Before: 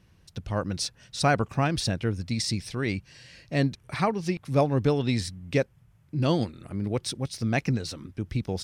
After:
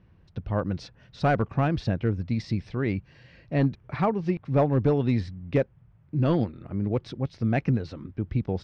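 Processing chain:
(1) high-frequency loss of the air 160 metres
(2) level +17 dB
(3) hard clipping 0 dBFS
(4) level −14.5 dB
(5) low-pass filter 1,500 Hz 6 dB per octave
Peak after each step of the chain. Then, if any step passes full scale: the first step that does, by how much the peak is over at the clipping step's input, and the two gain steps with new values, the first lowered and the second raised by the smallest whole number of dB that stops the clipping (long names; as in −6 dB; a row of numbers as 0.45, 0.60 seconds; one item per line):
−10.0, +7.0, 0.0, −14.5, −14.5 dBFS
step 2, 7.0 dB
step 2 +10 dB, step 4 −7.5 dB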